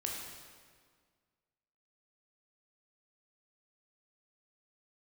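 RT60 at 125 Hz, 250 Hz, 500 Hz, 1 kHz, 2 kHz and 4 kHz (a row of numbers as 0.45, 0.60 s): 1.9, 2.0, 1.8, 1.8, 1.6, 1.4 s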